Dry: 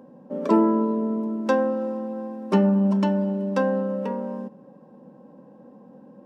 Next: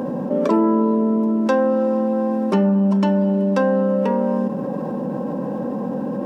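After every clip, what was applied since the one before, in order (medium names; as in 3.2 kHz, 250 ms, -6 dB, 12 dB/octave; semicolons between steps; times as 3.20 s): level flattener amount 70%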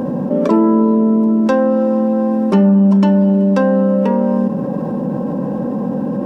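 bass shelf 180 Hz +10 dB; trim +2 dB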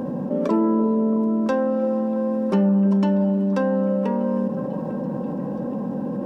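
repeats whose band climbs or falls 335 ms, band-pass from 440 Hz, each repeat 0.7 oct, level -9 dB; trim -7.5 dB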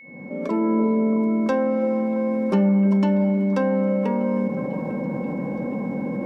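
fade-in on the opening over 0.80 s; whistle 2.2 kHz -43 dBFS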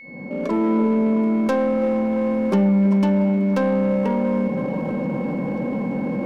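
tracing distortion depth 0.06 ms; in parallel at -6 dB: hard clipper -27 dBFS, distortion -6 dB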